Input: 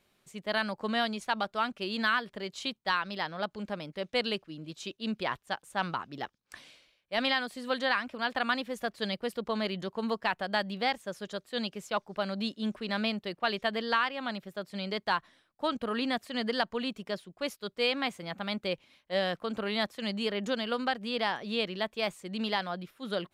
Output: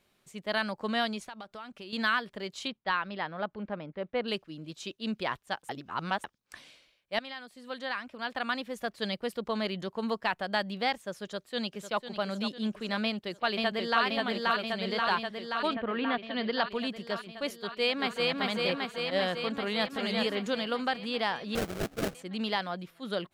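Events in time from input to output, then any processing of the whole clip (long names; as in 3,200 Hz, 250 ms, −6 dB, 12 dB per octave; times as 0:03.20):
0:01.19–0:01.93: downward compressor 4 to 1, threshold −42 dBFS
0:02.67–0:04.27: low-pass filter 3,400 Hz → 1,600 Hz
0:05.69–0:06.24: reverse
0:07.19–0:09.04: fade in, from −16.5 dB
0:11.24–0:12.04: delay throw 500 ms, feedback 60%, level −10 dB
0:13.04–0:14.03: delay throw 530 ms, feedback 75%, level −1.5 dB
0:15.73–0:16.69: low-pass filter 2,400 Hz → 5,300 Hz 24 dB per octave
0:17.59–0:18.32: delay throw 390 ms, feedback 75%, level −1 dB
0:19.54–0:20.00: delay throw 380 ms, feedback 15%, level −3 dB
0:21.55–0:22.15: sample-rate reduction 1,000 Hz, jitter 20%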